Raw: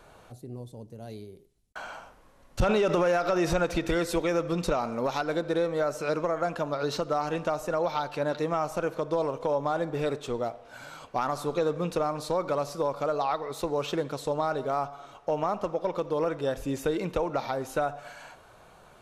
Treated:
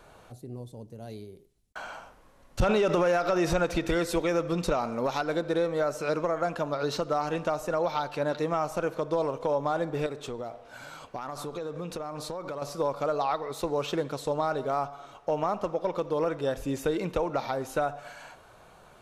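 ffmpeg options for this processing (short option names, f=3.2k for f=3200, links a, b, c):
-filter_complex "[0:a]asettb=1/sr,asplit=3[a][b][c];[a]atrim=end=10.064[d];[b]atrim=start=10.06:end=12.62,asetpts=PTS-STARTPTS,afade=t=in:d=0.004:c=qsin,afade=t=out:st=2.556:d=0.004:c=qsin,acompressor=threshold=-32dB:ratio=6:attack=3.2:release=140:knee=1:detection=peak[e];[c]atrim=start=12.616[f];[d][e]acrossfade=d=0.004:c1=hsin:c2=qsin[g];[g][f]acrossfade=d=0.004:c1=qsin:c2=hsin"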